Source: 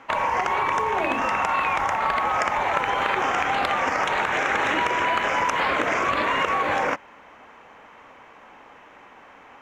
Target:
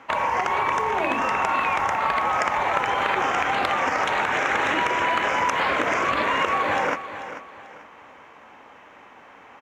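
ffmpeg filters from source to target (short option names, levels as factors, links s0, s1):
-filter_complex "[0:a]highpass=50,asplit=2[s0][s1];[s1]aecho=0:1:440|880|1320:0.251|0.0779|0.0241[s2];[s0][s2]amix=inputs=2:normalize=0"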